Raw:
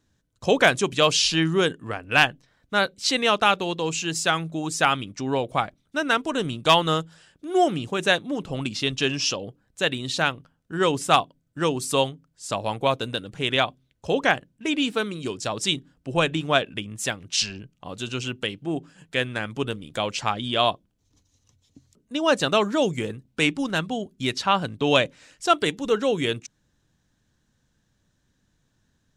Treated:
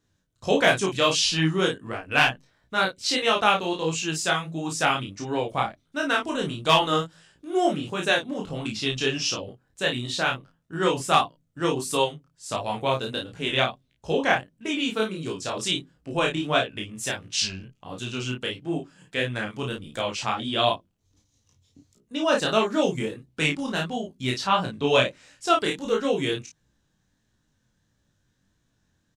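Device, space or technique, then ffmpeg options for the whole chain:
double-tracked vocal: -filter_complex "[0:a]asplit=2[link_01][link_02];[link_02]adelay=32,volume=-3.5dB[link_03];[link_01][link_03]amix=inputs=2:normalize=0,flanger=delay=17:depth=6.2:speed=1.5"

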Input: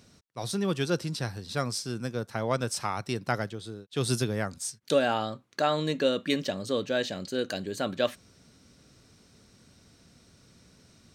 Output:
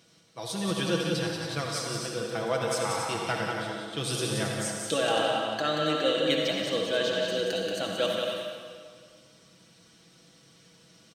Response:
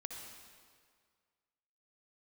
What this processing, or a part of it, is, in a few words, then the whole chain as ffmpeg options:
stadium PA: -filter_complex "[0:a]highpass=frequency=210:poles=1,equalizer=frequency=3100:width_type=o:width=0.26:gain=8,aecho=1:1:180.8|274.1:0.562|0.398[link_01];[1:a]atrim=start_sample=2205[link_02];[link_01][link_02]afir=irnorm=-1:irlink=0,aecho=1:1:6.1:0.65,volume=1.5dB"

